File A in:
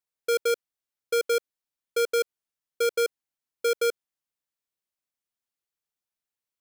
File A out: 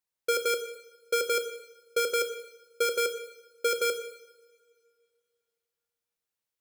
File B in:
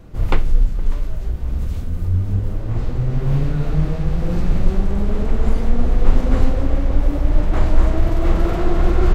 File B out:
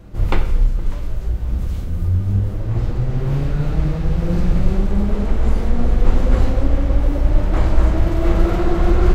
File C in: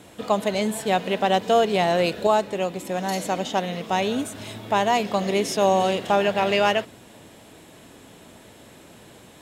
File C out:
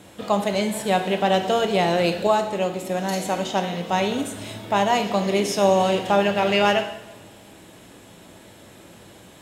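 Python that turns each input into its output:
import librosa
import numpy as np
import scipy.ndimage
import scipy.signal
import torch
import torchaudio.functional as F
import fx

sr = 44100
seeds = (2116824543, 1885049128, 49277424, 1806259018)

y = fx.rev_double_slope(x, sr, seeds[0], early_s=0.84, late_s=2.5, knee_db=-21, drr_db=6.0)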